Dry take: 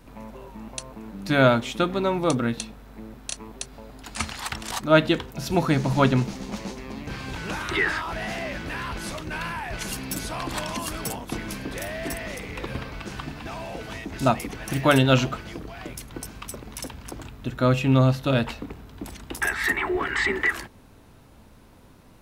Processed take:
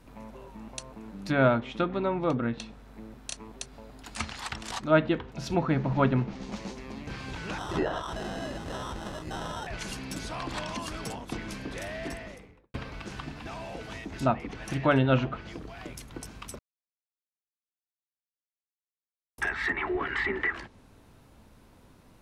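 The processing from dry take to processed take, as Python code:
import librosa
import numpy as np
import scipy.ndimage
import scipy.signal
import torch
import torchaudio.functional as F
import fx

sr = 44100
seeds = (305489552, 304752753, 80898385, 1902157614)

y = fx.sample_hold(x, sr, seeds[0], rate_hz=2300.0, jitter_pct=0, at=(7.58, 9.67))
y = fx.studio_fade_out(y, sr, start_s=11.98, length_s=0.76)
y = fx.edit(y, sr, fx.silence(start_s=16.59, length_s=2.79), tone=tone)
y = fx.env_lowpass_down(y, sr, base_hz=2200.0, full_db=-19.5)
y = F.gain(torch.from_numpy(y), -4.5).numpy()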